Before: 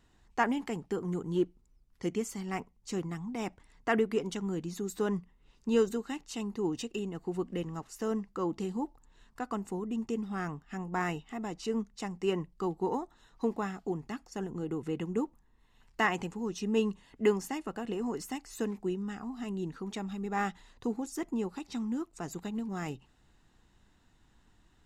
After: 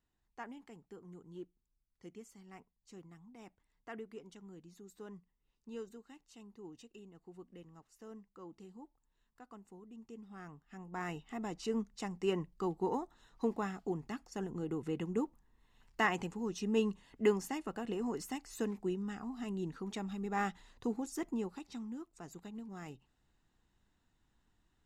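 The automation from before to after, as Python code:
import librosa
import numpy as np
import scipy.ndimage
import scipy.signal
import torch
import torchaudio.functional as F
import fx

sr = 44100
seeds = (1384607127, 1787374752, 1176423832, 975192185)

y = fx.gain(x, sr, db=fx.line((9.92, -18.5), (10.89, -10.5), (11.35, -3.0), (21.27, -3.0), (21.96, -10.5)))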